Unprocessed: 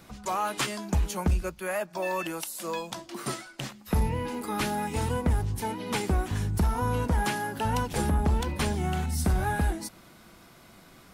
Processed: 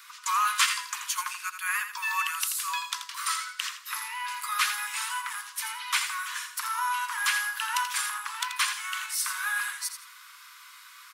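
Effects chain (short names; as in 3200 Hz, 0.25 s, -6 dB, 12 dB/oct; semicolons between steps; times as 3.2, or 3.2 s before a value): steep high-pass 1000 Hz 96 dB/oct; on a send: feedback echo 83 ms, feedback 27%, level -9 dB; on the sum: gain +7 dB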